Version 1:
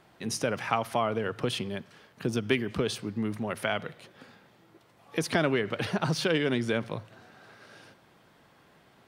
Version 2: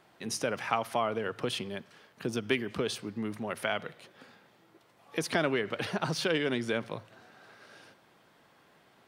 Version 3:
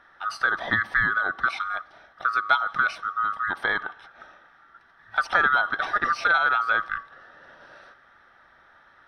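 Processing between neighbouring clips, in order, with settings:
low-shelf EQ 150 Hz −9 dB; level −1.5 dB
neighbouring bands swapped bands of 1,000 Hz; Savitzky-Golay smoothing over 15 samples; flat-topped bell 1,100 Hz +9 dB

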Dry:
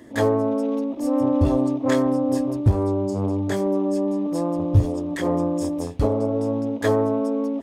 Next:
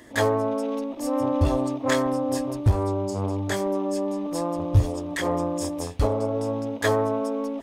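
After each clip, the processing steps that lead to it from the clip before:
parametric band 230 Hz −10.5 dB 2.9 octaves
level +4.5 dB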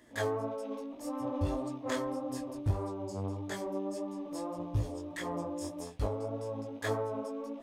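chorus effect 1.7 Hz, delay 16 ms, depth 5 ms
level −8.5 dB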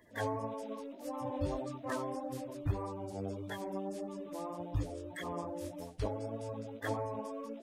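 spectral magnitudes quantised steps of 30 dB
level −2.5 dB

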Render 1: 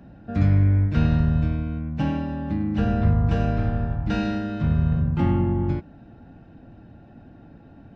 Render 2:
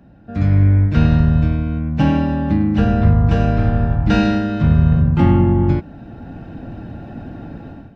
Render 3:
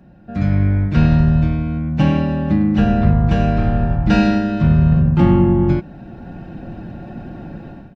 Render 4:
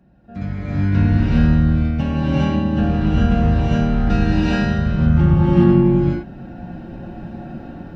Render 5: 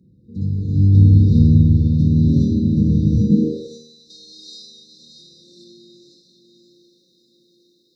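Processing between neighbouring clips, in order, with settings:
automatic gain control gain up to 16 dB; level −1 dB
comb filter 5.5 ms, depth 40%
reverb whose tail is shaped and stops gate 450 ms rising, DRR −7.5 dB; level −8.5 dB
linear-phase brick-wall band-stop 530–3,600 Hz; feedback delay with all-pass diffusion 607 ms, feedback 50%, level −7 dB; high-pass filter sweep 94 Hz → 2,000 Hz, 0:03.14–0:03.96; level −1 dB

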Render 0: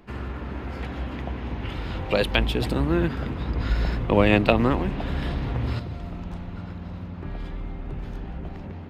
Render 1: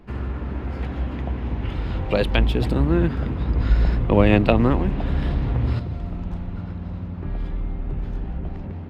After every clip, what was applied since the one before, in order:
spectral tilt −1.5 dB per octave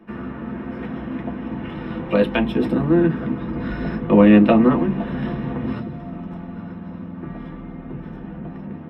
convolution reverb RT60 0.15 s, pre-delay 3 ms, DRR −0.5 dB
level −8.5 dB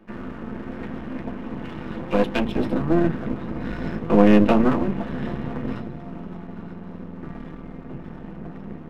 gain on one half-wave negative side −12 dB

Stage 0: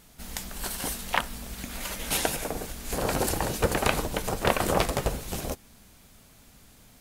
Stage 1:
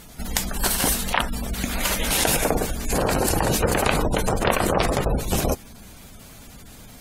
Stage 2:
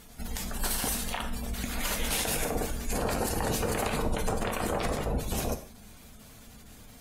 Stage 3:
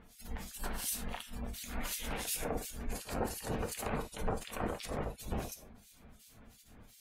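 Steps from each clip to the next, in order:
gate on every frequency bin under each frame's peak −25 dB strong; in parallel at +3 dB: compressor whose output falls as the input rises −31 dBFS, ratio −0.5; on the sum: level +2 dB
brickwall limiter −11.5 dBFS, peak gain reduction 10 dB; reverb whose tail is shaped and stops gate 180 ms falling, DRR 6 dB; level −8 dB
two-band tremolo in antiphase 2.8 Hz, depth 100%, crossover 2,400 Hz; level −3.5 dB

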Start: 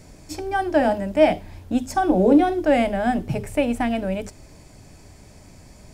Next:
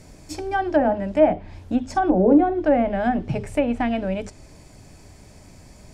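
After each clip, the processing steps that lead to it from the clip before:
treble cut that deepens with the level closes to 1,300 Hz, closed at −14 dBFS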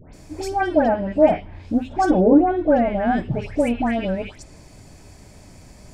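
all-pass dispersion highs, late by 139 ms, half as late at 1,900 Hz
level +1.5 dB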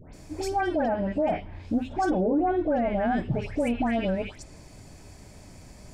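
brickwall limiter −15 dBFS, peak gain reduction 11 dB
level −2.5 dB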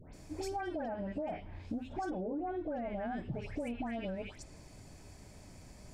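downward compressor, threshold −29 dBFS, peak gain reduction 8.5 dB
level −6 dB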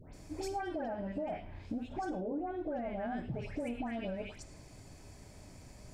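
reverb whose tail is shaped and stops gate 130 ms flat, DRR 11 dB

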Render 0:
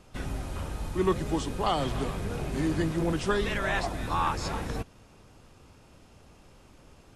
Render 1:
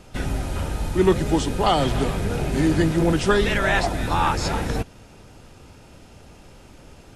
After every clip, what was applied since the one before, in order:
notch filter 1,100 Hz, Q 8.4
level +8.5 dB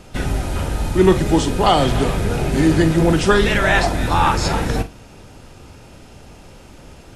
flutter between parallel walls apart 7.4 metres, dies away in 0.22 s
level +4.5 dB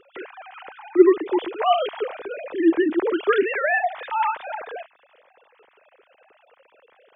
three sine waves on the formant tracks
level −6 dB

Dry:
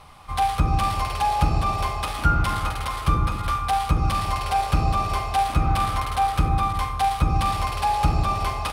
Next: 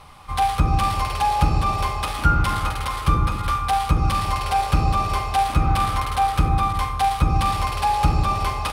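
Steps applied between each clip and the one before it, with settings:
notch filter 680 Hz, Q 12
level +2 dB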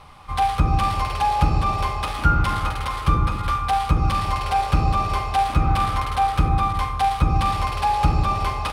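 high-shelf EQ 6,800 Hz −7.5 dB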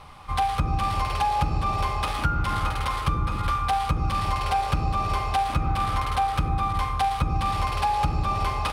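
downward compressor, threshold −20 dBFS, peak gain reduction 9 dB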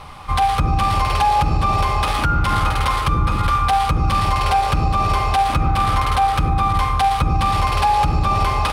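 brickwall limiter −16.5 dBFS, peak gain reduction 6 dB
level +8.5 dB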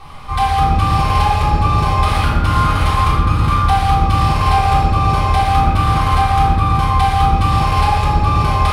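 convolution reverb RT60 1.2 s, pre-delay 3 ms, DRR −7 dB
level −5.5 dB

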